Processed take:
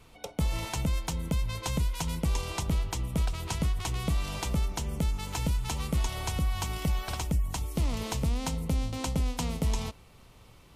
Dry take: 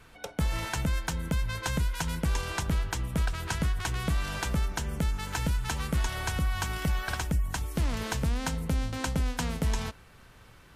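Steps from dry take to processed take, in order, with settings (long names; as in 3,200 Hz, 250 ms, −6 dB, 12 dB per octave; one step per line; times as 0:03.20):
parametric band 1,600 Hz −13.5 dB 0.43 octaves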